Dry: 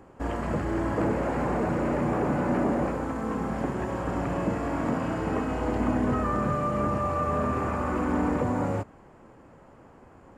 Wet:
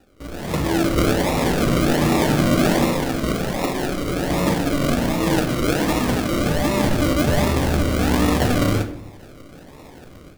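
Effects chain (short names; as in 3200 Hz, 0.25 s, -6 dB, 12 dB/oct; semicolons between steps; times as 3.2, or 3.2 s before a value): 3.34–4.3 HPF 280 Hz 6 dB/oct; 5.2–6.01 comb 6.2 ms, depth 78%; AGC gain up to 15 dB; decimation with a swept rate 40×, swing 60% 1.3 Hz; shoebox room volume 130 m³, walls mixed, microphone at 0.43 m; gain -6 dB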